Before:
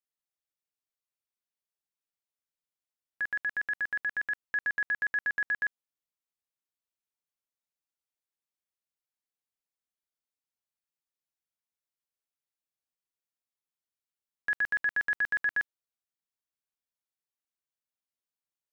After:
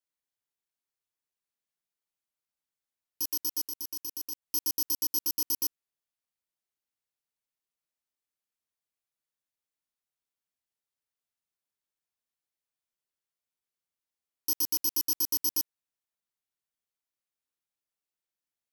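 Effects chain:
samples in bit-reversed order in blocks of 64 samples
0:03.68–0:04.42: output level in coarse steps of 9 dB

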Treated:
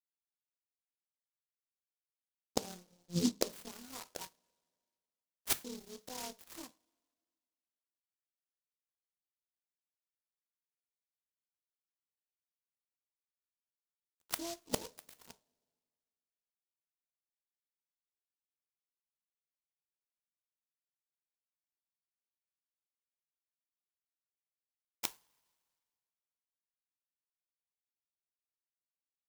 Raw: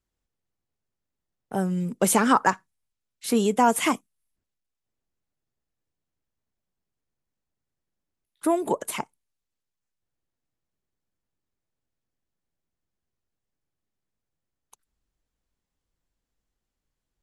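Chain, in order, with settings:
reverb reduction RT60 0.73 s
EQ curve with evenly spaced ripples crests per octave 1.8, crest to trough 9 dB
in parallel at −1 dB: brickwall limiter −15.5 dBFS, peak gain reduction 10 dB
on the sum: automatic gain control gain up to 9.5 dB
time stretch by overlap-add 1.7×, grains 57 ms
gate with flip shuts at −18 dBFS, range −33 dB
dead-zone distortion −53.5 dBFS
on a send at −11 dB: convolution reverb, pre-delay 3 ms
on the sum: short delay modulated by noise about 5,000 Hz, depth 0.18 ms
level +2.5 dB

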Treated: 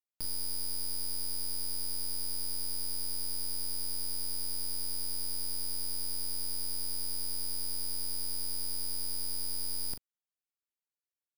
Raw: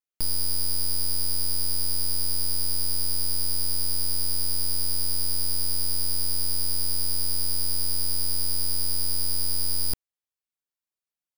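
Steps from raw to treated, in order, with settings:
low-shelf EQ 100 Hz −5 dB
double-tracking delay 40 ms −9 dB
level −9 dB

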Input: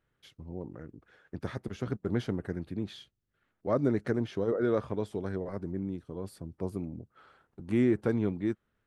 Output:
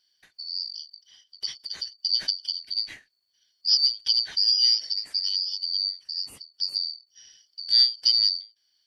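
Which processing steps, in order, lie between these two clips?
band-splitting scrambler in four parts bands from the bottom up 4321
every ending faded ahead of time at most 210 dB per second
level +7.5 dB

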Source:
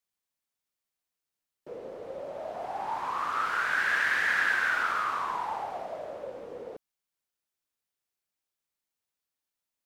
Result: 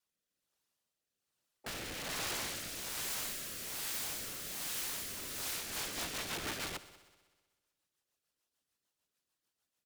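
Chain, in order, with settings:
high-pass filter 53 Hz 12 dB per octave
high-shelf EQ 9,900 Hz −4 dB
notch filter 2,200 Hz, Q 6.2
leveller curve on the samples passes 1
pitch vibrato 1.4 Hz 25 cents
pitch-shifted copies added −7 semitones −12 dB, −4 semitones −11 dB, +5 semitones −18 dB
random phases in short frames
wrap-around overflow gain 40.5 dB
rotating-speaker cabinet horn 1.2 Hz, later 6.7 Hz, at 0:05.27
echo machine with several playback heads 63 ms, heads all three, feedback 51%, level −22 dB
level +8 dB

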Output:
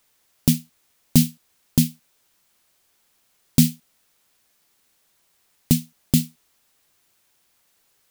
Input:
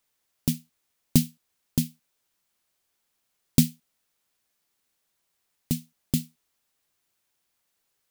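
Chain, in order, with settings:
boost into a limiter +12 dB
level −1 dB

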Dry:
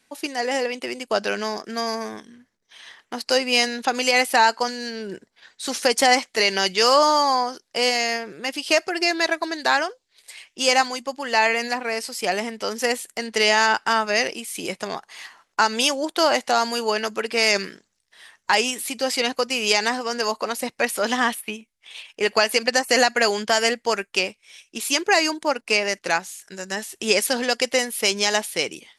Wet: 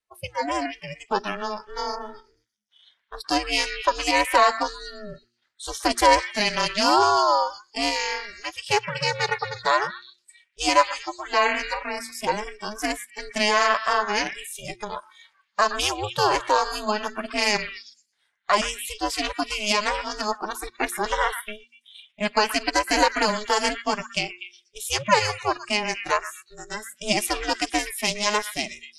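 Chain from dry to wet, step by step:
on a send: echo through a band-pass that steps 121 ms, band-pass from 1,700 Hz, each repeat 0.7 octaves, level −7 dB
on the sum: dynamic equaliser 770 Hz, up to +5 dB, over −34 dBFS, Q 3.8
noise reduction from a noise print of the clip's start 21 dB
ring modulation 210 Hz
parametric band 1,000 Hz +4 dB 0.32 octaves
hum removal 118.1 Hz, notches 3
level −1 dB

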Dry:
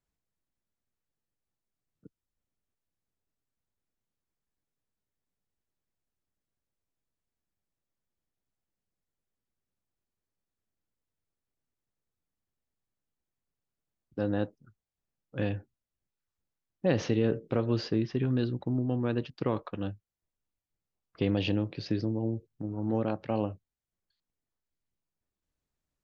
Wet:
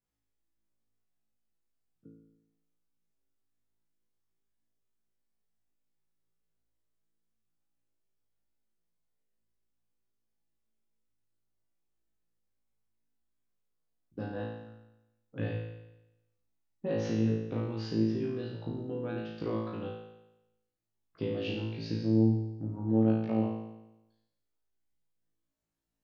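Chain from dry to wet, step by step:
parametric band 250 Hz +4.5 dB 1.9 octaves
downward compressor, threshold −25 dBFS, peak gain reduction 8 dB
flutter between parallel walls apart 3.1 metres, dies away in 0.95 s
level −8 dB

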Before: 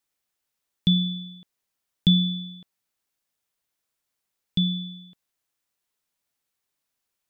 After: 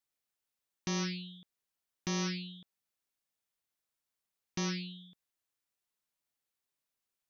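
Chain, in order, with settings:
brickwall limiter −18.5 dBFS, peak gain reduction 10.5 dB
highs frequency-modulated by the lows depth 0.76 ms
level −7.5 dB

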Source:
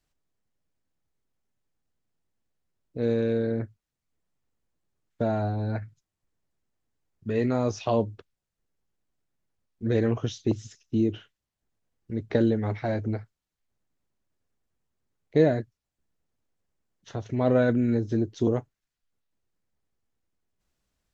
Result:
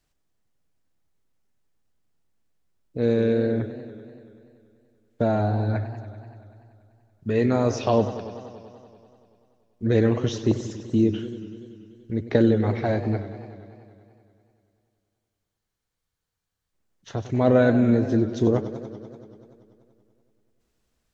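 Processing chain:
frozen spectrum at 0:13.57, 3.17 s
feedback echo with a swinging delay time 96 ms, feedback 77%, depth 140 cents, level −13.5 dB
level +4 dB

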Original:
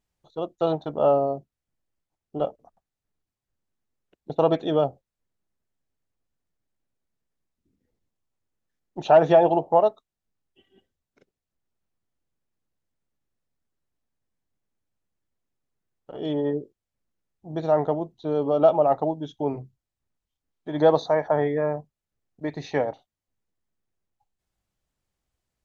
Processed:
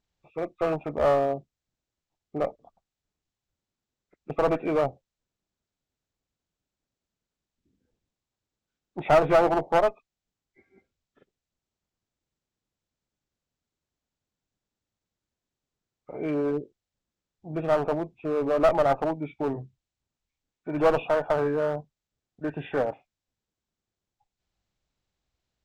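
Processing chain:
hearing-aid frequency compression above 1,100 Hz 1.5 to 1
asymmetric clip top −22.5 dBFS

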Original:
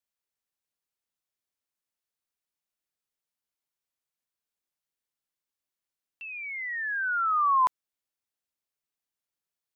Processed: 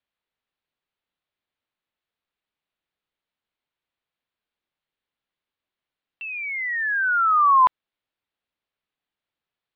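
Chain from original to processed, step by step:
Butterworth low-pass 4,000 Hz
level +7 dB

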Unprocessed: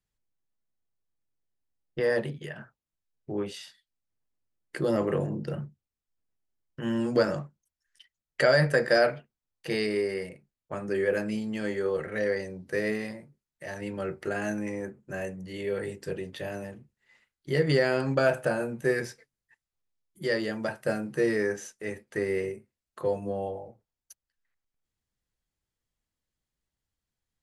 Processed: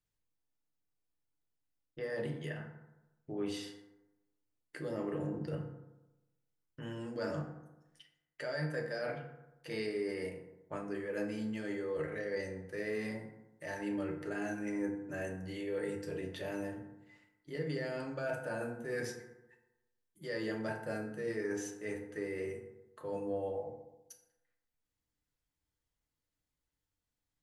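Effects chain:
reversed playback
downward compressor 10 to 1, threshold −32 dBFS, peak gain reduction 15.5 dB
reversed playback
feedback delay network reverb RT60 1 s, low-frequency decay 1×, high-frequency decay 0.45×, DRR 2 dB
level −4.5 dB

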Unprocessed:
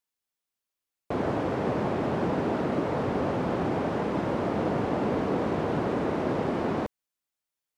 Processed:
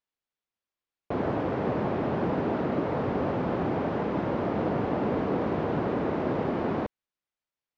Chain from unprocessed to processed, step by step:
high-frequency loss of the air 150 metres

